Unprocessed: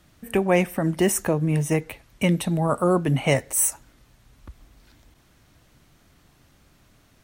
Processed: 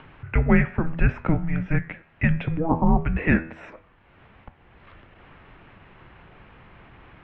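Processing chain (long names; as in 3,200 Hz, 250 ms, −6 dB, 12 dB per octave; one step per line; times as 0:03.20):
upward compression, threshold −35 dBFS
hum removal 81.75 Hz, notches 36
single-sideband voice off tune −330 Hz 190–3,000 Hz
level +3 dB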